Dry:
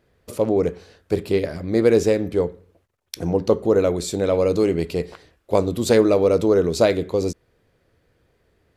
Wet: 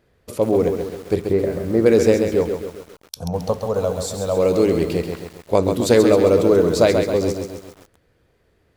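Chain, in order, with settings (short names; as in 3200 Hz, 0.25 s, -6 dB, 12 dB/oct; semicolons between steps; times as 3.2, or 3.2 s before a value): 1.21–1.86 running mean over 14 samples; 2.43–4.37 fixed phaser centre 820 Hz, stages 4; lo-fi delay 0.134 s, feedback 55%, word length 7-bit, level -6 dB; gain +1.5 dB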